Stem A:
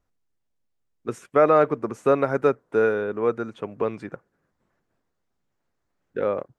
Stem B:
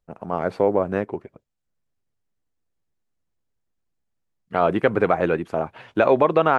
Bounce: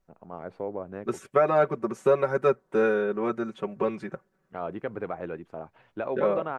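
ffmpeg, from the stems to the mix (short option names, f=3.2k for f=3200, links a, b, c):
-filter_complex "[0:a]aecho=1:1:5.3:0.82,volume=-2.5dB[a];[1:a]highshelf=f=3.1k:g=-9.5,volume=-14dB[b];[a][b]amix=inputs=2:normalize=0,alimiter=limit=-11dB:level=0:latency=1:release=460"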